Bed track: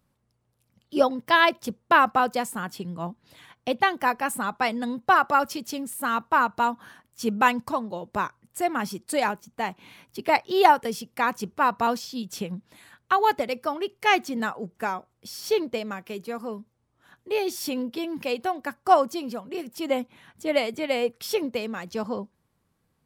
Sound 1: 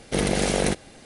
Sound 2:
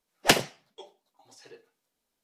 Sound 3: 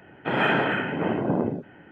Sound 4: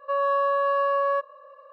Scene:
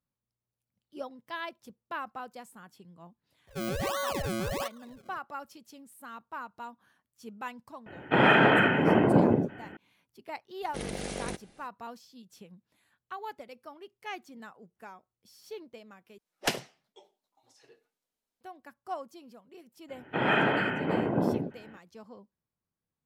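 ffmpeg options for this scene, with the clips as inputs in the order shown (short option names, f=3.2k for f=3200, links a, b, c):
-filter_complex "[3:a]asplit=2[a][b];[0:a]volume=-19dB[c];[4:a]acrusher=samples=33:mix=1:aa=0.000001:lfo=1:lforange=33:lforate=1.4[d];[a]alimiter=level_in=13dB:limit=-1dB:release=50:level=0:latency=1[e];[c]asplit=2[f][g];[f]atrim=end=16.184[h];[2:a]atrim=end=2.23,asetpts=PTS-STARTPTS,volume=-9dB[i];[g]atrim=start=18.406[j];[d]atrim=end=1.72,asetpts=PTS-STARTPTS,volume=-9dB,afade=t=in:d=0.004:c=hsin,afade=t=out:st=1.716:d=0.004:c=hsin,adelay=3470[k];[e]atrim=end=1.91,asetpts=PTS-STARTPTS,volume=-9.5dB,afade=t=in:d=0.004:c=hsin,afade=t=out:st=1.906:d=0.004:c=hsin,adelay=346626S[l];[1:a]atrim=end=1.05,asetpts=PTS-STARTPTS,volume=-13.5dB,afade=t=in:d=0.004:c=hsin,afade=t=out:st=1.046:d=0.004:c=hsin,adelay=10620[m];[b]atrim=end=1.91,asetpts=PTS-STARTPTS,volume=-3dB,afade=t=in:d=0.02,afade=t=out:st=1.89:d=0.02,adelay=876708S[n];[h][i]acrossfade=d=0.004:c1=hsin:c2=hsin[o];[o][j]acrossfade=d=0.004:c1=hsin:c2=hsin[p];[p][k][l][m][n]amix=inputs=5:normalize=0"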